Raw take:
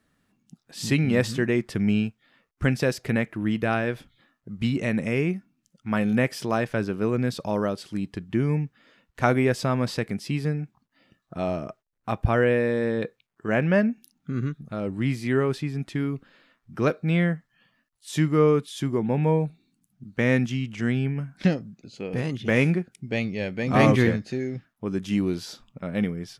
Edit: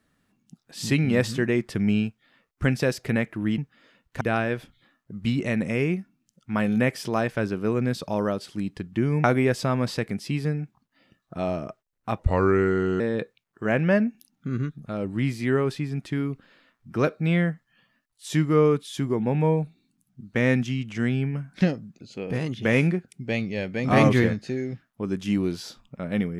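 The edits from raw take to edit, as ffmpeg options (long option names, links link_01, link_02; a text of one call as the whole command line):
ffmpeg -i in.wav -filter_complex "[0:a]asplit=6[link_01][link_02][link_03][link_04][link_05][link_06];[link_01]atrim=end=3.582[link_07];[link_02]atrim=start=8.608:end=9.242[link_08];[link_03]atrim=start=3.578:end=8.612[link_09];[link_04]atrim=start=9.238:end=12.194[link_10];[link_05]atrim=start=12.19:end=12.83,asetpts=PTS-STARTPTS,asetrate=34839,aresample=44100[link_11];[link_06]atrim=start=12.826[link_12];[link_07][link_08]acrossfade=duration=0.004:curve1=hsin:curve2=hsin[link_13];[link_13][link_09]acrossfade=duration=0.004:curve1=hsin:curve2=hsin[link_14];[link_14][link_10]acrossfade=duration=0.004:curve1=hsin:curve2=hsin[link_15];[link_15][link_11]acrossfade=duration=0.004:curve1=hsin:curve2=hsin[link_16];[link_16][link_12]acrossfade=duration=0.004:curve1=hsin:curve2=hsin" out.wav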